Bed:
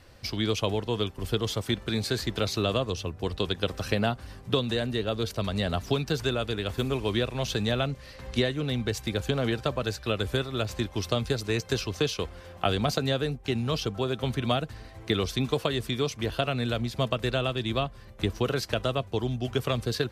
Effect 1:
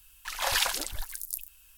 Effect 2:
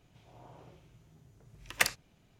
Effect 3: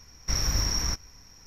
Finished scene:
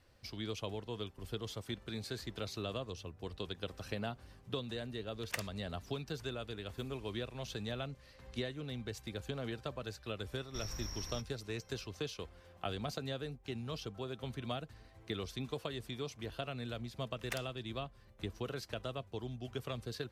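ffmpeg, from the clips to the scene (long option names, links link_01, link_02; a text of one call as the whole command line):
ffmpeg -i bed.wav -i cue0.wav -i cue1.wav -i cue2.wav -filter_complex "[2:a]asplit=2[link_01][link_02];[0:a]volume=-13.5dB[link_03];[link_01]atrim=end=2.39,asetpts=PTS-STARTPTS,volume=-12.5dB,afade=type=in:duration=0.004:curve=hsin,afade=type=out:start_time=2.386:duration=0.004:curve=hsin,adelay=155673S[link_04];[3:a]atrim=end=1.46,asetpts=PTS-STARTPTS,volume=-17.5dB,afade=type=in:duration=0.004:curve=hsin,afade=type=out:start_time=1.456:duration=0.004:curve=hsin,adelay=452466S[link_05];[link_02]atrim=end=2.39,asetpts=PTS-STARTPTS,volume=-15.5dB,afade=type=in:duration=0.004:curve=hsin,afade=type=out:start_time=2.386:duration=0.004:curve=hsin,adelay=15510[link_06];[link_03][link_04][link_05][link_06]amix=inputs=4:normalize=0" out.wav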